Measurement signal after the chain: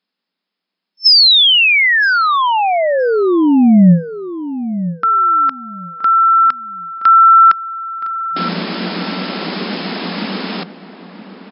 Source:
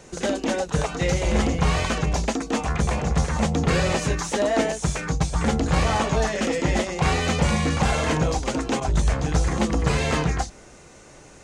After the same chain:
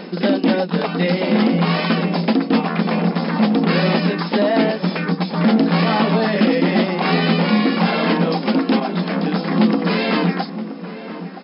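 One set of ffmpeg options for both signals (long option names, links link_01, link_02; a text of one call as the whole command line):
ffmpeg -i in.wav -filter_complex "[0:a]apsyclip=17.5dB,bass=frequency=250:gain=13,treble=frequency=4000:gain=3,dynaudnorm=framelen=140:gausssize=31:maxgain=11.5dB,afftfilt=real='re*between(b*sr/4096,170,5300)':imag='im*between(b*sr/4096,170,5300)':win_size=4096:overlap=0.75,asplit=2[link_01][link_02];[link_02]adelay=971,lowpass=frequency=1600:poles=1,volume=-12dB,asplit=2[link_03][link_04];[link_04]adelay=971,lowpass=frequency=1600:poles=1,volume=0.22,asplit=2[link_05][link_06];[link_06]adelay=971,lowpass=frequency=1600:poles=1,volume=0.22[link_07];[link_03][link_05][link_07]amix=inputs=3:normalize=0[link_08];[link_01][link_08]amix=inputs=2:normalize=0,volume=1dB" out.wav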